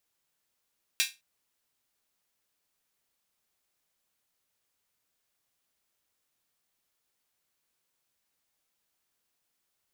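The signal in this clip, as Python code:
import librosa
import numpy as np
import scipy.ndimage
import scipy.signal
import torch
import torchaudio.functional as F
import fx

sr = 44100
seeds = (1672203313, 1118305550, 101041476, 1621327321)

y = fx.drum_hat_open(sr, length_s=0.21, from_hz=2500.0, decay_s=0.23)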